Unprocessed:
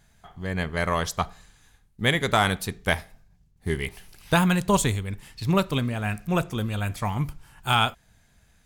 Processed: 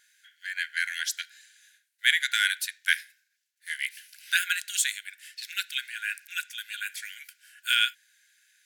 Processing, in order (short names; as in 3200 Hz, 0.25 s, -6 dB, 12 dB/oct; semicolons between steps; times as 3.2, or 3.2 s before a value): brick-wall FIR high-pass 1400 Hz; gain +2.5 dB